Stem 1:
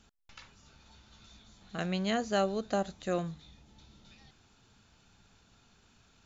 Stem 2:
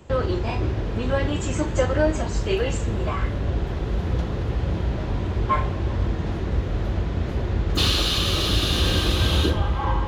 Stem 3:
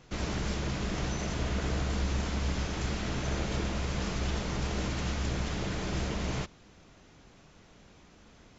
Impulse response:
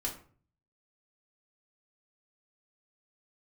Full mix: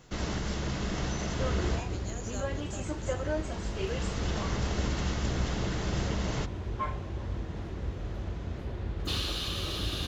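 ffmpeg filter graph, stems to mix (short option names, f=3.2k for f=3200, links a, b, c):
-filter_complex "[0:a]aexciter=amount=4.9:drive=9.9:freq=5.3k,volume=-15.5dB,asplit=2[a][b];[1:a]adelay=1300,volume=-11.5dB[c];[2:a]bandreject=f=2.4k:w=13,volume=0.5dB[d];[b]apad=whole_len=378398[e];[d][e]sidechaincompress=threshold=-55dB:ratio=8:attack=47:release=1150[f];[a][c][f]amix=inputs=3:normalize=0"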